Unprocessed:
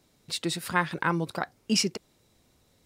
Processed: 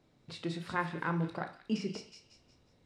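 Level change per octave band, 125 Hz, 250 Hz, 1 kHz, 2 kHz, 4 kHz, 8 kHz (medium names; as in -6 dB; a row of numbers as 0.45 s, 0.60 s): -3.5 dB, -5.5 dB, -7.0 dB, -8.5 dB, -15.5 dB, -21.5 dB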